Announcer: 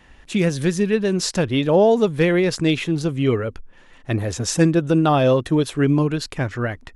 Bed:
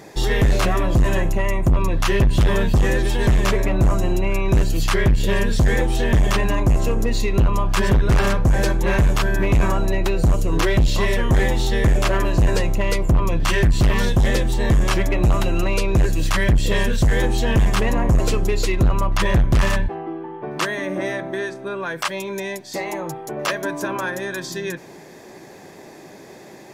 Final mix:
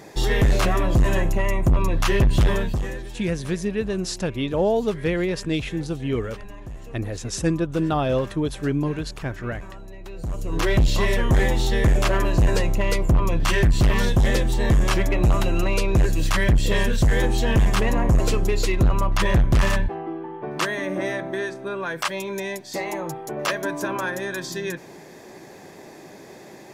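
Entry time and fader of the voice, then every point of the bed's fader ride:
2.85 s, -6.0 dB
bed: 2.46 s -1.5 dB
3.27 s -20.5 dB
9.98 s -20.5 dB
10.71 s -1.5 dB

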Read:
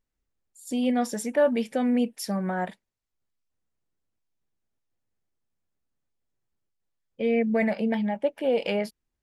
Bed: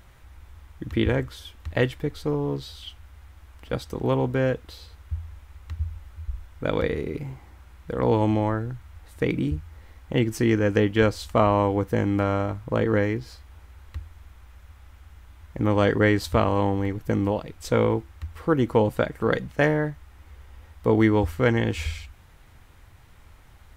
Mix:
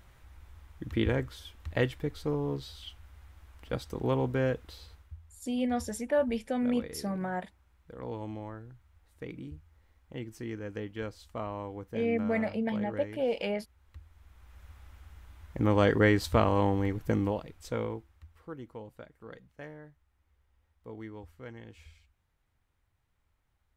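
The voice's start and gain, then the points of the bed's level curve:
4.75 s, -5.5 dB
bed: 4.92 s -5.5 dB
5.17 s -17.5 dB
13.78 s -17.5 dB
14.64 s -3.5 dB
17.08 s -3.5 dB
18.8 s -24.5 dB

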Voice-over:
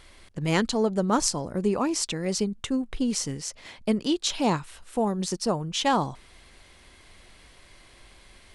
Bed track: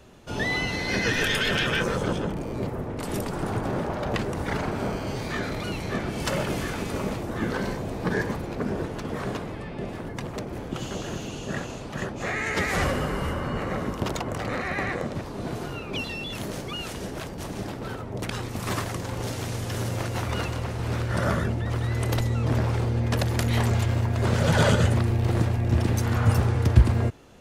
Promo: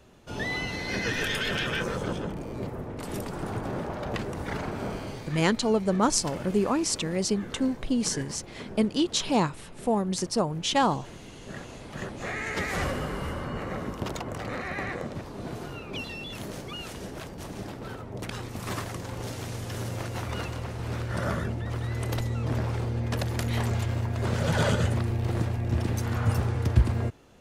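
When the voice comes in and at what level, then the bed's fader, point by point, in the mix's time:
4.90 s, 0.0 dB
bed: 5 s -4.5 dB
5.42 s -12.5 dB
11.17 s -12.5 dB
12.06 s -4.5 dB

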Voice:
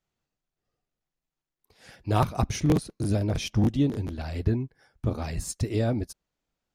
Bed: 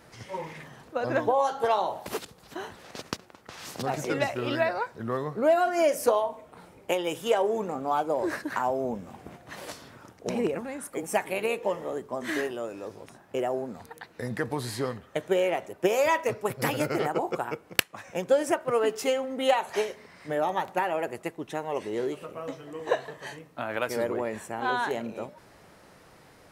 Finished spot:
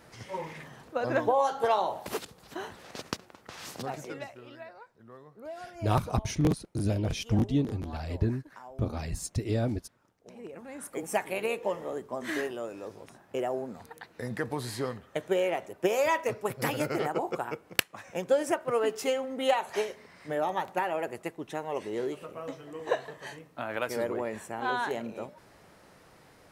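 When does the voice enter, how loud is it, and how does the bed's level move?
3.75 s, -3.0 dB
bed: 3.65 s -1 dB
4.52 s -20 dB
10.36 s -20 dB
10.83 s -2.5 dB

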